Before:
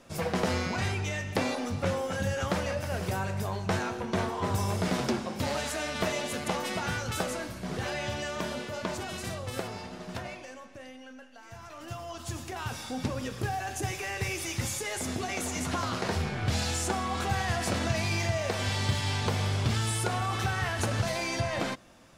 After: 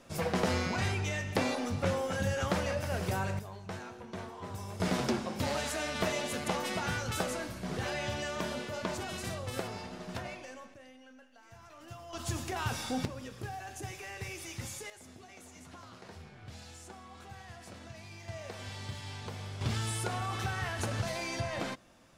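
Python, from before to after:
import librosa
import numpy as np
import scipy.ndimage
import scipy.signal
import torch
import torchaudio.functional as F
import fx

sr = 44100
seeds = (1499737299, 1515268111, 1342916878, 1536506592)

y = fx.gain(x, sr, db=fx.steps((0.0, -1.5), (3.39, -12.5), (4.8, -2.0), (10.74, -8.0), (12.13, 1.5), (13.05, -9.0), (14.9, -19.5), (18.28, -13.0), (19.61, -5.0)))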